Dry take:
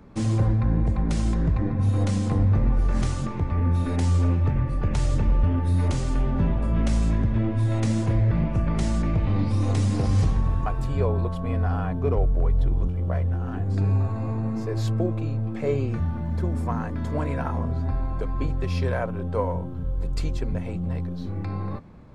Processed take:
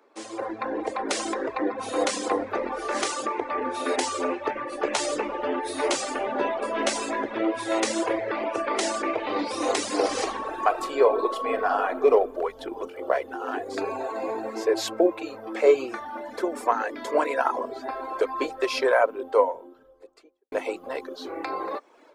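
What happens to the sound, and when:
0:04.70–0:07.35: double-tracking delay 14 ms −6.5 dB
0:09.94–0:12.14: thrown reverb, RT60 1.1 s, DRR 5 dB
0:13.96–0:15.30: notch filter 1,200 Hz, Q 5.2
0:19.03–0:20.52: fade out and dull
whole clip: reverb reduction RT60 0.87 s; inverse Chebyshev high-pass filter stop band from 180 Hz, stop band 40 dB; automatic gain control gain up to 15 dB; level −4 dB

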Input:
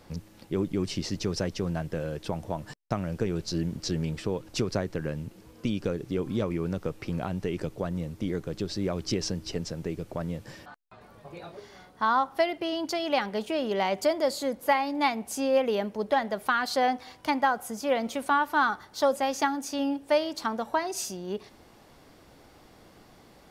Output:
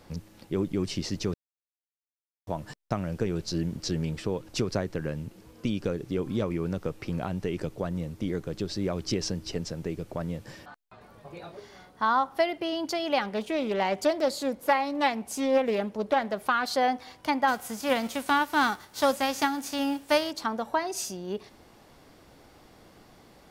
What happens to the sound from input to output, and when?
0:01.34–0:02.47: silence
0:13.22–0:16.67: highs frequency-modulated by the lows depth 0.19 ms
0:17.47–0:20.30: spectral envelope flattened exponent 0.6

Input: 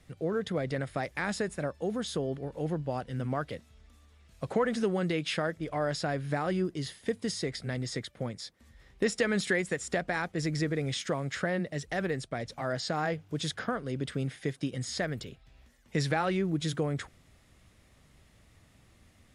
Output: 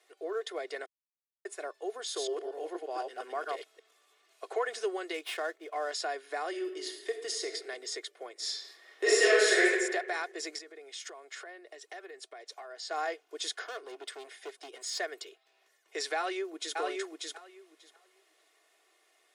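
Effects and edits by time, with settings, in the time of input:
0:00.86–0:01.45: silence
0:02.04–0:04.48: delay that plays each chunk backwards 117 ms, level −1 dB
0:05.14–0:05.91: running median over 9 samples
0:06.49–0:07.50: thrown reverb, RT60 1.3 s, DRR 5.5 dB
0:08.33–0:09.65: thrown reverb, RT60 1.3 s, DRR −8.5 dB
0:10.58–0:12.91: downward compressor 5 to 1, threshold −39 dBFS
0:13.66–0:15.00: gain into a clipping stage and back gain 32.5 dB
0:16.16–0:16.78: delay throw 590 ms, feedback 15%, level −2.5 dB
whole clip: Butterworth high-pass 380 Hz 48 dB per octave; comb filter 2.8 ms, depth 58%; dynamic equaliser 6,400 Hz, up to +5 dB, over −50 dBFS, Q 0.77; level −3.5 dB

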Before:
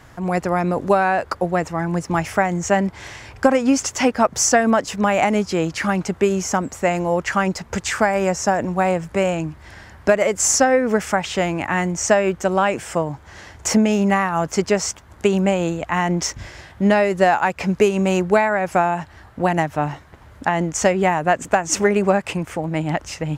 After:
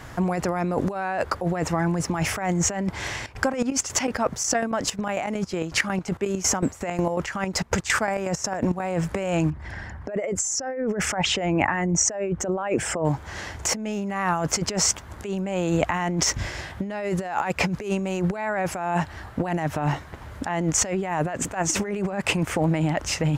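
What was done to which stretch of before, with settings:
0:03.17–0:08.80: square-wave tremolo 5.5 Hz
0:09.50–0:13.05: spectral envelope exaggerated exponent 1.5
whole clip: compressor whose output falls as the input rises −25 dBFS, ratio −1

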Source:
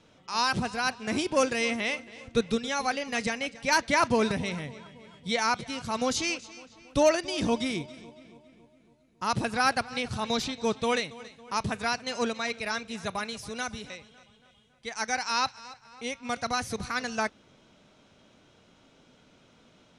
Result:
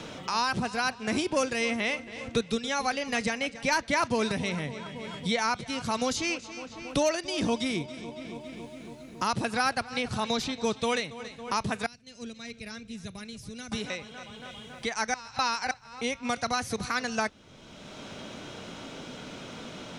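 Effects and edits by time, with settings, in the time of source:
0:11.86–0:13.72: guitar amp tone stack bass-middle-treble 10-0-1
0:15.14–0:15.71: reverse
whole clip: multiband upward and downward compressor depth 70%

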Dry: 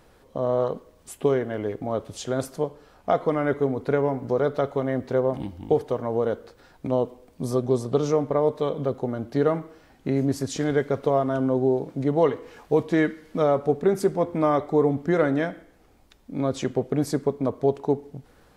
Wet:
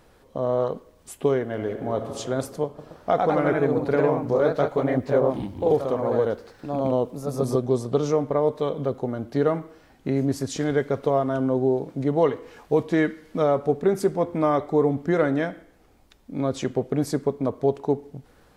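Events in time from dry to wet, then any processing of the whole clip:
0:01.44–0:02.13: thrown reverb, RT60 2.3 s, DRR 5 dB
0:02.66–0:07.72: delay with pitch and tempo change per echo 123 ms, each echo +1 semitone, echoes 2

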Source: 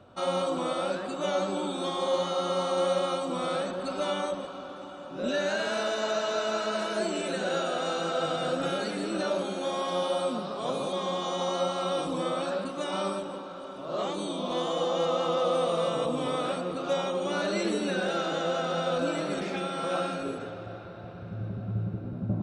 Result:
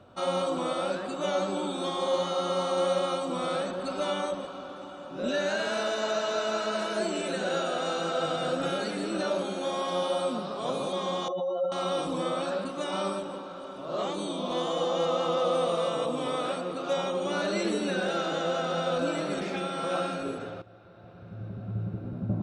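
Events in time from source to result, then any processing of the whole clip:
0:11.28–0:11.72: expanding power law on the bin magnitudes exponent 2.5
0:15.75–0:16.98: low-shelf EQ 120 Hz −10.5 dB
0:20.62–0:22.11: fade in, from −15 dB

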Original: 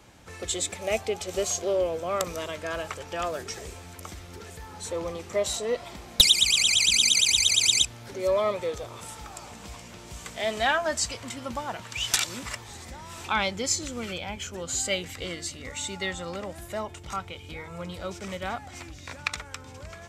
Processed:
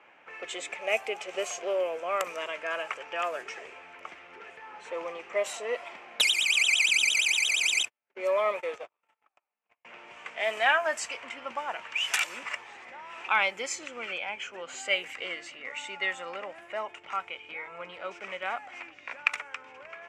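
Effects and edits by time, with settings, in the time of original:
0:07.83–0:09.85: noise gate −37 dBFS, range −45 dB
whole clip: high-pass filter 560 Hz 12 dB per octave; high shelf with overshoot 3,200 Hz −6.5 dB, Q 3; low-pass that shuts in the quiet parts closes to 2,800 Hz, open at −25.5 dBFS

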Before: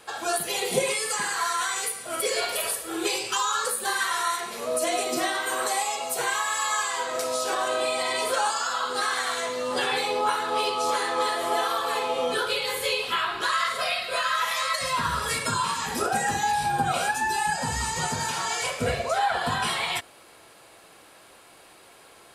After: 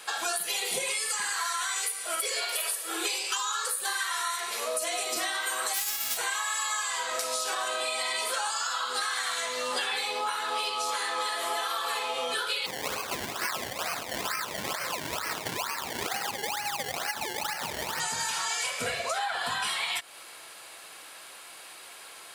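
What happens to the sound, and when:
0:01.58–0:05.16: Chebyshev high-pass filter 350 Hz
0:05.73–0:06.16: spectral envelope flattened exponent 0.1
0:12.66–0:18.00: sample-and-hold swept by an LFO 24× 2.2 Hz
whole clip: high-pass filter 82 Hz; tilt shelving filter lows −8 dB, about 700 Hz; downward compressor, threshold −28 dBFS

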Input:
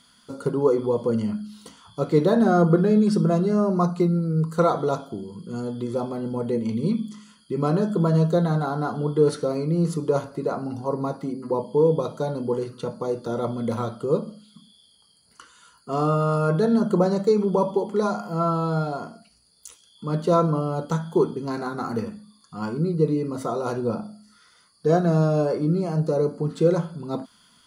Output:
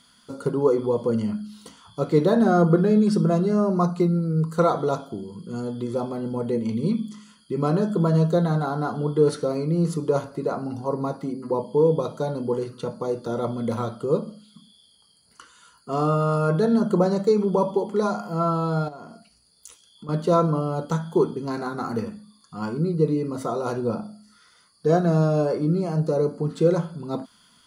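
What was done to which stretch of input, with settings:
0:18.88–0:20.09: downward compressor 4 to 1, threshold −37 dBFS

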